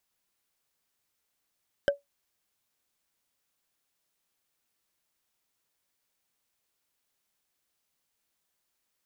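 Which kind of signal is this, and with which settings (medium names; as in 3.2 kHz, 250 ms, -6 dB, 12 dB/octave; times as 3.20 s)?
wood hit, lowest mode 567 Hz, decay 0.15 s, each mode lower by 5.5 dB, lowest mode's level -16 dB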